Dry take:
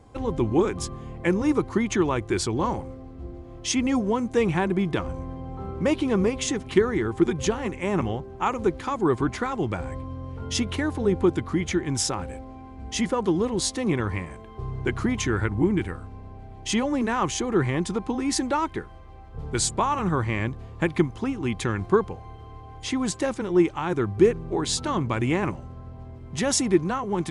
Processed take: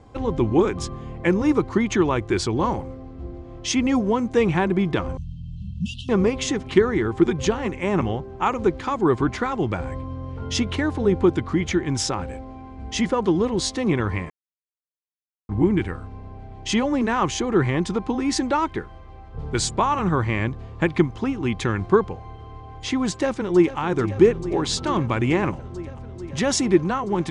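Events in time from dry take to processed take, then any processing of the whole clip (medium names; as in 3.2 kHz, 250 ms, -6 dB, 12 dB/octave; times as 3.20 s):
5.17–6.09 s: brick-wall FIR band-stop 230–2600 Hz
14.30–15.49 s: mute
23.10–23.78 s: echo throw 440 ms, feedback 85%, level -13.5 dB
whole clip: low-pass 6.4 kHz 12 dB/octave; trim +3 dB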